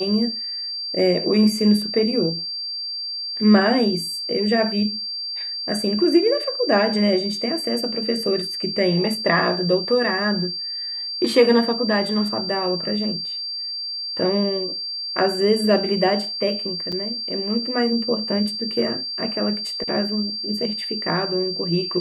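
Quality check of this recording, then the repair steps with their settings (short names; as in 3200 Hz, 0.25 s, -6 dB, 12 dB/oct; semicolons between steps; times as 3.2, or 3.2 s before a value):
tone 4700 Hz -26 dBFS
16.92–16.93 gap 5.3 ms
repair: notch 4700 Hz, Q 30; interpolate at 16.92, 5.3 ms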